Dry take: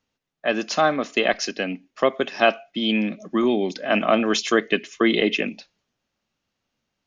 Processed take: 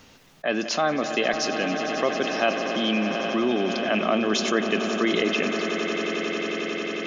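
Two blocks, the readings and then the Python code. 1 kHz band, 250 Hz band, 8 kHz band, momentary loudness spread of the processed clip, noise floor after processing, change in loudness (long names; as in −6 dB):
−2.0 dB, −1.5 dB, can't be measured, 5 LU, −52 dBFS, −2.0 dB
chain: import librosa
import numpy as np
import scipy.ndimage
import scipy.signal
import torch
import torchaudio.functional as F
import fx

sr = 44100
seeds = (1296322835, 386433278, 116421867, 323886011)

p1 = x + fx.echo_swell(x, sr, ms=90, loudest=8, wet_db=-16.5, dry=0)
p2 = fx.env_flatten(p1, sr, amount_pct=50)
y = p2 * 10.0 ** (-6.5 / 20.0)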